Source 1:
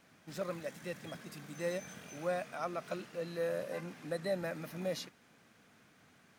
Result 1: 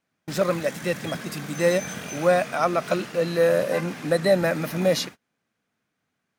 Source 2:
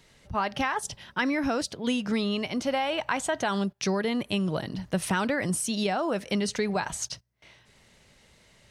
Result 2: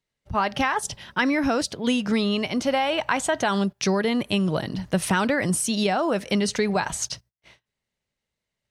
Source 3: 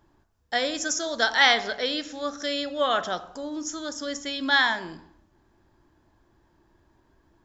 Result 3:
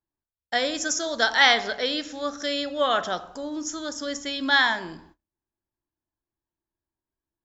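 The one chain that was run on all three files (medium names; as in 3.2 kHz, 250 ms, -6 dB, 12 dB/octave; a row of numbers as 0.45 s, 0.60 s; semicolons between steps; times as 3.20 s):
gate -53 dBFS, range -30 dB; normalise loudness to -24 LUFS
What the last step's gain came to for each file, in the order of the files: +16.0 dB, +4.5 dB, +1.0 dB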